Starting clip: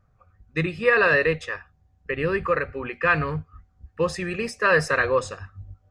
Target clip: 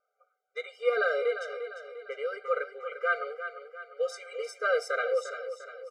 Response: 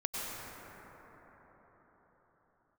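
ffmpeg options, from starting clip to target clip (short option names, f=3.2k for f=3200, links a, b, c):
-filter_complex "[0:a]asplit=2[a][b];[b]aecho=0:1:349|698|1047|1396|1745:0.316|0.152|0.0729|0.035|0.0168[c];[a][c]amix=inputs=2:normalize=0,afftfilt=real='re*eq(mod(floor(b*sr/1024/400),2),1)':imag='im*eq(mod(floor(b*sr/1024/400),2),1)':win_size=1024:overlap=0.75,volume=-5.5dB"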